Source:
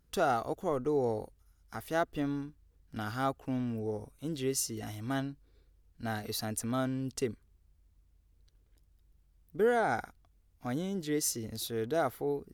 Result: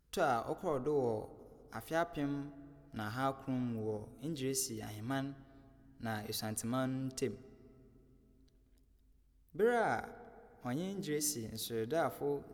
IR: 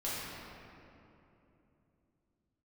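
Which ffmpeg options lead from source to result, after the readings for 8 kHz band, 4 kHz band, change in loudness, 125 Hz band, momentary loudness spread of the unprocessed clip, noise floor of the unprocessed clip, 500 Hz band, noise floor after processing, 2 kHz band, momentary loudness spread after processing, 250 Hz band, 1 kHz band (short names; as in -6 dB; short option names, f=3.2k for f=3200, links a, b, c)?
-3.5 dB, -3.5 dB, -4.0 dB, -4.0 dB, 12 LU, -68 dBFS, -4.0 dB, -68 dBFS, -3.5 dB, 15 LU, -4.0 dB, -4.0 dB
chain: -filter_complex "[0:a]bandreject=f=99.01:t=h:w=4,bandreject=f=198.02:t=h:w=4,bandreject=f=297.03:t=h:w=4,bandreject=f=396.04:t=h:w=4,bandreject=f=495.05:t=h:w=4,bandreject=f=594.06:t=h:w=4,bandreject=f=693.07:t=h:w=4,bandreject=f=792.08:t=h:w=4,bandreject=f=891.09:t=h:w=4,bandreject=f=990.1:t=h:w=4,bandreject=f=1.08911k:t=h:w=4,bandreject=f=1.18812k:t=h:w=4,bandreject=f=1.28713k:t=h:w=4,asplit=2[a][b];[1:a]atrim=start_sample=2205[c];[b][c]afir=irnorm=-1:irlink=0,volume=-23dB[d];[a][d]amix=inputs=2:normalize=0,volume=-4dB"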